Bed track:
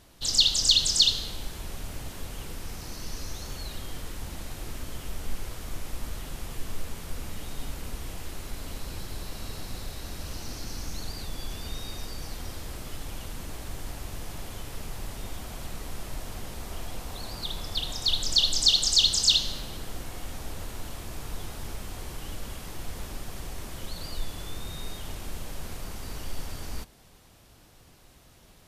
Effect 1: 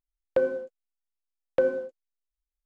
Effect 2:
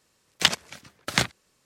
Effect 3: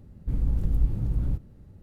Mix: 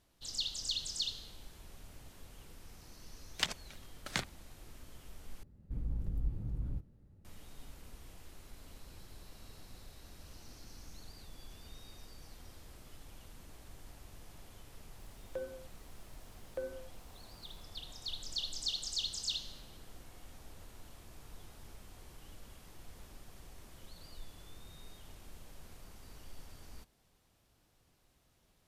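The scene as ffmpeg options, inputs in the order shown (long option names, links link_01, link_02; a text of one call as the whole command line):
ffmpeg -i bed.wav -i cue0.wav -i cue1.wav -i cue2.wav -filter_complex "[0:a]volume=-16dB[link_01];[1:a]acompressor=mode=upward:threshold=-35dB:ratio=4:attack=2:release=38:knee=2.83:detection=peak[link_02];[link_01]asplit=2[link_03][link_04];[link_03]atrim=end=5.434[link_05];[3:a]atrim=end=1.82,asetpts=PTS-STARTPTS,volume=-12dB[link_06];[link_04]atrim=start=7.246[link_07];[2:a]atrim=end=1.65,asetpts=PTS-STARTPTS,volume=-13.5dB,afade=type=in:duration=0.004:curve=hsin,afade=type=out:start_time=1.646:duration=0.004:curve=hsin,adelay=2980[link_08];[link_02]atrim=end=2.65,asetpts=PTS-STARTPTS,volume=-17.5dB,afade=type=in:duration=0.004:curve=hsin,afade=type=out:start_time=2.646:duration=0.004:curve=hsin,adelay=14990[link_09];[link_05][link_06]acrossfade=duration=0.004:curve1=hsin:curve2=hsin[link_10];[link_10][link_07]acrossfade=duration=0.004:curve1=hsin:curve2=hsin[link_11];[link_11][link_08][link_09]amix=inputs=3:normalize=0" out.wav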